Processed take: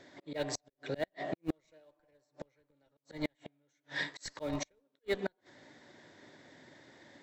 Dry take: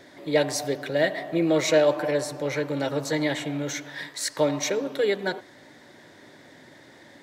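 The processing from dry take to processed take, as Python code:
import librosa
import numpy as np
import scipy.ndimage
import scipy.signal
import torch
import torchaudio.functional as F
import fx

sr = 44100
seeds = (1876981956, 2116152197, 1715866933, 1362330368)

p1 = fx.brickwall_lowpass(x, sr, high_hz=8000.0)
p2 = fx.schmitt(p1, sr, flips_db=-19.5)
p3 = p1 + (p2 * 10.0 ** (-9.5 / 20.0))
p4 = fx.auto_swell(p3, sr, attack_ms=366.0)
p5 = fx.gate_flip(p4, sr, shuts_db=-23.0, range_db=-35)
p6 = fx.upward_expand(p5, sr, threshold_db=-56.0, expansion=1.5)
y = p6 * 10.0 ** (2.5 / 20.0)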